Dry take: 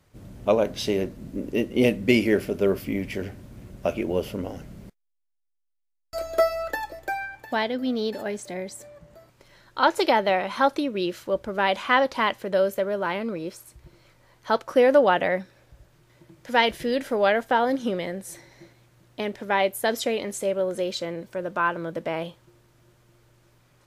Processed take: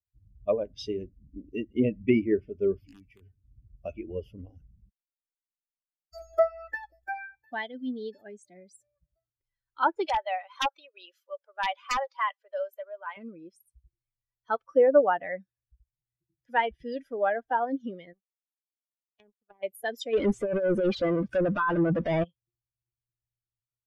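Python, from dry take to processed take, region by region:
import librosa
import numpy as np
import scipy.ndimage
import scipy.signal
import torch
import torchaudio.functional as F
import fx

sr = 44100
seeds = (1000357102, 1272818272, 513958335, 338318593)

y = fx.chain(x, sr, fx.comb_fb(f0_hz=140.0, decay_s=0.29, harmonics='odd', damping=0.0, mix_pct=60),
    fx.overflow_wrap(gain_db=24.5),
    fx.band_squash(depth_pct=40), at=(2.87, 3.45))
y = fx.chain(y, sr, fx.highpass(hz=540.0, slope=24),
    fx.overflow_wrap(gain_db=11.5), at=(10.07, 13.17))
y = fx.chain(y, sr, fx.env_lowpass_down(base_hz=490.0, full_db=-23.0),
    fx.power_curve(exponent=2.0), at=(18.13, 19.63))
y = fx.chain(y, sr, fx.over_compress(threshold_db=-28.0, ratio=-0.5),
    fx.leveller(passes=5), at=(20.13, 22.24))
y = fx.bin_expand(y, sr, power=2.0)
y = fx.env_lowpass_down(y, sr, base_hz=1500.0, full_db=-21.0)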